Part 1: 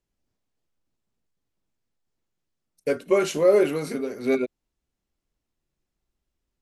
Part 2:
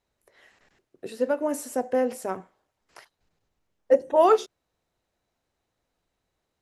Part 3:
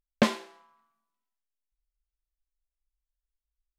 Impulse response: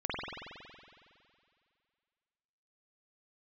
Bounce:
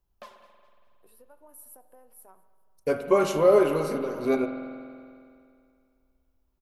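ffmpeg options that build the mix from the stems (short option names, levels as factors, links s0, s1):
-filter_complex "[0:a]lowshelf=f=370:g=7.5,volume=1.19,asplit=2[s0][s1];[s1]volume=0.266[s2];[1:a]acompressor=threshold=0.0355:ratio=5,aexciter=amount=9.4:drive=5.5:freq=9300,volume=0.126,asplit=3[s3][s4][s5];[s4]volume=0.112[s6];[s5]volume=0.075[s7];[2:a]highpass=f=570:p=1,aphaser=in_gain=1:out_gain=1:delay=3:decay=0.55:speed=1.2:type=triangular,volume=0.112,asplit=3[s8][s9][s10];[s9]volume=0.282[s11];[s10]volume=0.188[s12];[3:a]atrim=start_sample=2205[s13];[s2][s6][s11]amix=inputs=3:normalize=0[s14];[s14][s13]afir=irnorm=-1:irlink=0[s15];[s7][s12]amix=inputs=2:normalize=0,aecho=0:1:206|412|618|824|1030|1236:1|0.41|0.168|0.0689|0.0283|0.0116[s16];[s0][s3][s8][s15][s16]amix=inputs=5:normalize=0,equalizer=f=125:t=o:w=1:g=-7,equalizer=f=250:t=o:w=1:g=-9,equalizer=f=500:t=o:w=1:g=-6,equalizer=f=1000:t=o:w=1:g=5,equalizer=f=2000:t=o:w=1:g=-9,equalizer=f=4000:t=o:w=1:g=-4,equalizer=f=8000:t=o:w=1:g=-8"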